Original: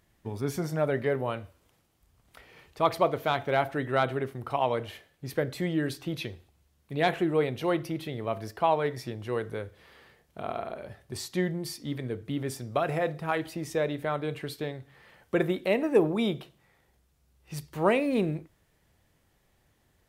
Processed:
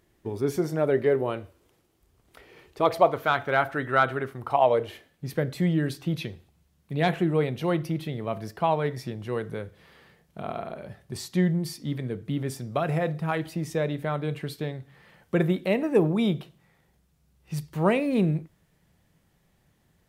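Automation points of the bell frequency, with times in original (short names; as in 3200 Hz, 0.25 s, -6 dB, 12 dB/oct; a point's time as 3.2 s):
bell +9 dB 0.69 oct
2.81 s 370 Hz
3.24 s 1400 Hz
4.3 s 1400 Hz
5.25 s 170 Hz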